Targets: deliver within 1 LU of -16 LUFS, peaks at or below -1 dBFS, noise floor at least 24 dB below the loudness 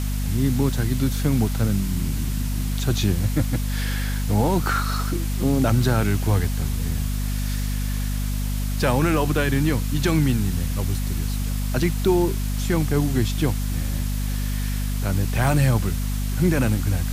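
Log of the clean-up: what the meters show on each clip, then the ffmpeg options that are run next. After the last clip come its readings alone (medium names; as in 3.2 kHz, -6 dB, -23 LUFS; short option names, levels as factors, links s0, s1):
hum 50 Hz; highest harmonic 250 Hz; hum level -22 dBFS; noise floor -24 dBFS; noise floor target -47 dBFS; loudness -23.0 LUFS; peak level -8.0 dBFS; loudness target -16.0 LUFS
-> -af "bandreject=f=50:t=h:w=4,bandreject=f=100:t=h:w=4,bandreject=f=150:t=h:w=4,bandreject=f=200:t=h:w=4,bandreject=f=250:t=h:w=4"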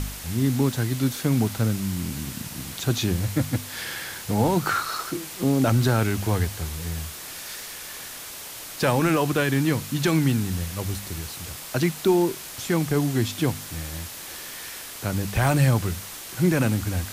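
hum not found; noise floor -38 dBFS; noise floor target -49 dBFS
-> -af "afftdn=nr=11:nf=-38"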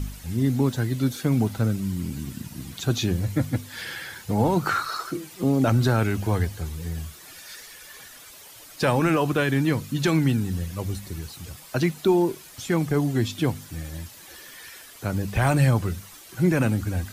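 noise floor -46 dBFS; noise floor target -49 dBFS
-> -af "afftdn=nr=6:nf=-46"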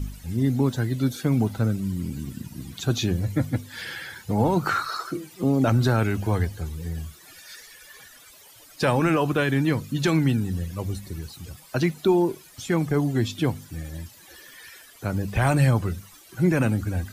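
noise floor -50 dBFS; loudness -24.5 LUFS; peak level -10.0 dBFS; loudness target -16.0 LUFS
-> -af "volume=2.66"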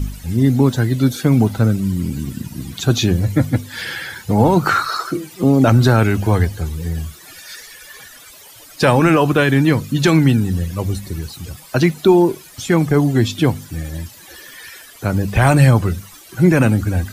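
loudness -16.0 LUFS; peak level -1.5 dBFS; noise floor -42 dBFS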